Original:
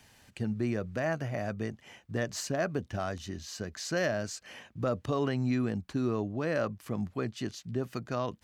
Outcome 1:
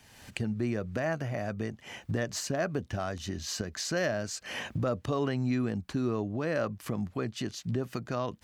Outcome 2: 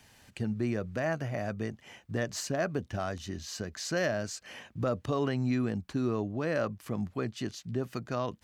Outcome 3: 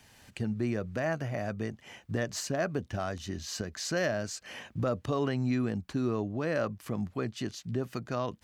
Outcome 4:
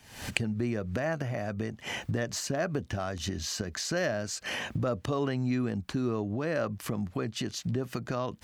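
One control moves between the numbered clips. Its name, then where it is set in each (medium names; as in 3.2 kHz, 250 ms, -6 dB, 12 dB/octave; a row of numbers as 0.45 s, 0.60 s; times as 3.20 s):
recorder AGC, rising by: 35 dB/s, 5.1 dB/s, 13 dB/s, 86 dB/s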